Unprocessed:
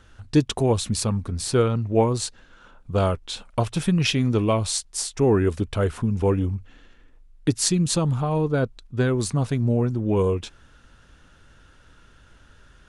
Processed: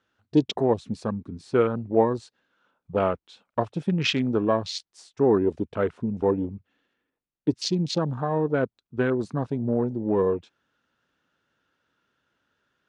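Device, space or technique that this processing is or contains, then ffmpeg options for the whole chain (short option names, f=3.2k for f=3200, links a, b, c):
over-cleaned archive recording: -af "highpass=200,lowpass=5.3k,afwtdn=0.0224"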